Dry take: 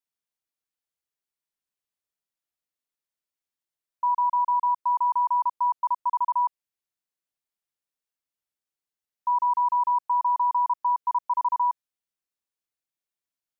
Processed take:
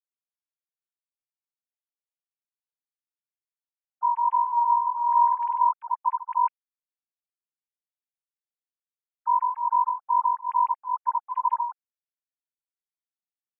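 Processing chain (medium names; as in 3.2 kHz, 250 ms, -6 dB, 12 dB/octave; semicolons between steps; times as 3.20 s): formants replaced by sine waves; 4.31–5.69 s: flutter echo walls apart 8.3 m, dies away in 1.1 s; cancelling through-zero flanger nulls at 0.24 Hz, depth 5 ms; trim +2 dB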